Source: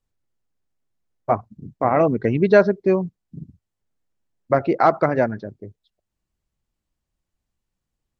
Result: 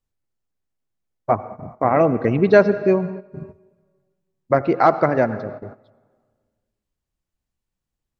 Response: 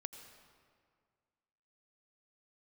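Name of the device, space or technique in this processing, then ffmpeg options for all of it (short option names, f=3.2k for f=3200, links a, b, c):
keyed gated reverb: -filter_complex "[0:a]asplit=3[a][b][c];[1:a]atrim=start_sample=2205[d];[b][d]afir=irnorm=-1:irlink=0[e];[c]apad=whole_len=361250[f];[e][f]sidechaingate=range=-12dB:threshold=-41dB:ratio=16:detection=peak,volume=3dB[g];[a][g]amix=inputs=2:normalize=0,volume=-4.5dB"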